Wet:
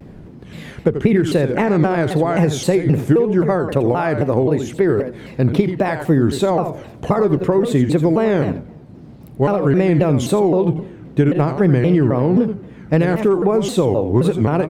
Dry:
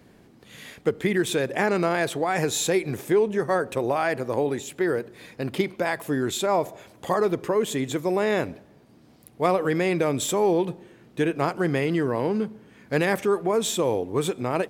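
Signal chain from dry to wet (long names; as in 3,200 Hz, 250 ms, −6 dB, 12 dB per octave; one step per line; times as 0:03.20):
parametric band 150 Hz +4 dB 0.42 octaves
repeating echo 86 ms, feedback 16%, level −10 dB
downward compressor, threshold −23 dBFS, peak gain reduction 7.5 dB
spectral tilt −3 dB per octave
pitch modulation by a square or saw wave saw down 3.8 Hz, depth 250 cents
level +7.5 dB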